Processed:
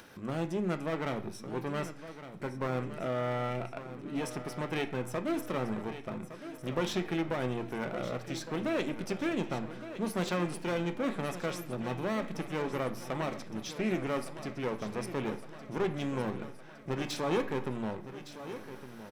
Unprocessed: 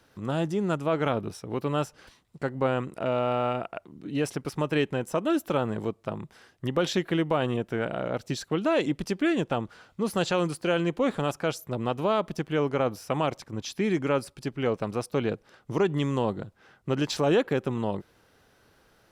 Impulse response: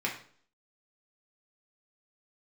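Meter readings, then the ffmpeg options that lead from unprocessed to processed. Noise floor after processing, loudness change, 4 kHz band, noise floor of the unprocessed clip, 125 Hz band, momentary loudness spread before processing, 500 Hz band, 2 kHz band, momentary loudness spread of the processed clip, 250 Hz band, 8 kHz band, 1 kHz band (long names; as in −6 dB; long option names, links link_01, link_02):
−48 dBFS, −7.0 dB, −6.5 dB, −63 dBFS, −6.5 dB, 9 LU, −7.5 dB, −4.5 dB, 9 LU, −6.0 dB, −4.5 dB, −6.5 dB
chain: -filter_complex "[0:a]acompressor=mode=upward:threshold=-39dB:ratio=2.5,aeval=exprs='clip(val(0),-1,0.0299)':channel_layout=same,aecho=1:1:1162|2324|3486|4648|5810|6972:0.237|0.138|0.0798|0.0463|0.0268|0.0156,asplit=2[link_01][link_02];[1:a]atrim=start_sample=2205,highshelf=frequency=11000:gain=8.5[link_03];[link_02][link_03]afir=irnorm=-1:irlink=0,volume=-9dB[link_04];[link_01][link_04]amix=inputs=2:normalize=0,volume=-7.5dB"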